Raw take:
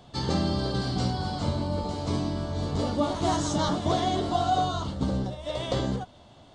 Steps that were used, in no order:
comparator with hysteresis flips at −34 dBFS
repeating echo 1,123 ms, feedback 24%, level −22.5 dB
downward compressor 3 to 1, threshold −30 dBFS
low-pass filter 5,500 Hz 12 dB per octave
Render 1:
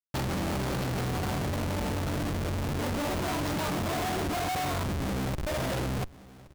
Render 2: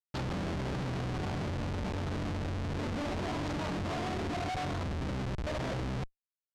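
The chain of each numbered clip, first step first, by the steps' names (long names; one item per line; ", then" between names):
low-pass filter, then comparator with hysteresis, then repeating echo, then downward compressor
repeating echo, then downward compressor, then comparator with hysteresis, then low-pass filter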